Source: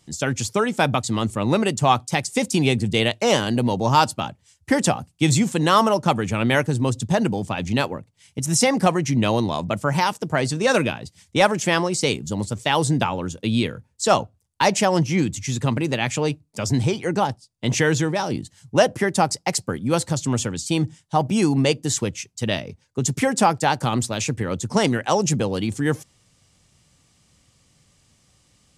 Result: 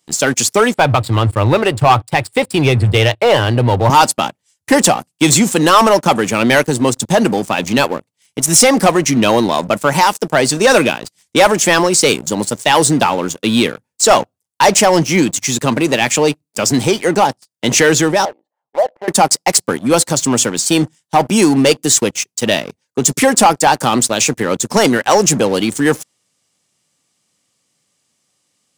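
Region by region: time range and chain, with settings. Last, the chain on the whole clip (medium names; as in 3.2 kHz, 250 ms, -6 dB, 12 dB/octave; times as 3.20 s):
0.74–3.90 s: boxcar filter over 7 samples + resonant low shelf 140 Hz +13 dB, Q 3
18.25–19.08 s: compression 2:1, threshold -23 dBFS + Butterworth band-pass 720 Hz, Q 1.6
whole clip: high-pass 240 Hz 12 dB/octave; treble shelf 9.2 kHz +9 dB; waveshaping leveller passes 3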